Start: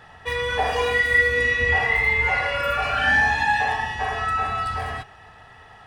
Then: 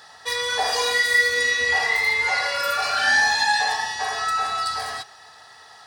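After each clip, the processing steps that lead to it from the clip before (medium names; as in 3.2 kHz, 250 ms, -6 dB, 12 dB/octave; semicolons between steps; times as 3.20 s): high-pass 990 Hz 6 dB/octave; resonant high shelf 3.5 kHz +7.5 dB, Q 3; trim +3.5 dB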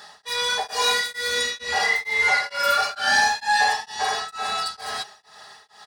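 comb 4.9 ms, depth 64%; in parallel at -10.5 dB: overload inside the chain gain 22 dB; on the sum: tremolo of two beating tones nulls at 2.2 Hz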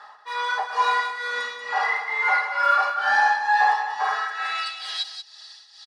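on a send: delay 185 ms -9 dB; on the sum: band-pass sweep 1.1 kHz -> 4.4 kHz, 4.02–5.13 s; trim +6.5 dB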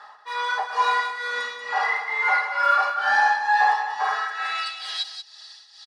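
no audible change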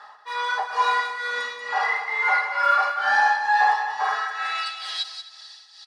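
thinning echo 260 ms, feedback 46%, level -19 dB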